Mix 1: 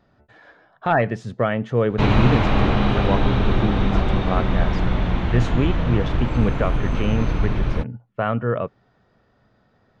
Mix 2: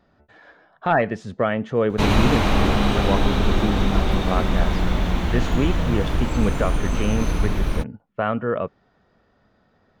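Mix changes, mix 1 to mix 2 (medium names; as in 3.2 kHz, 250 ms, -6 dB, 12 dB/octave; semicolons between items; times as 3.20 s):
background: remove low-pass 3.3 kHz 12 dB/octave; master: add peaking EQ 120 Hz -10 dB 0.22 oct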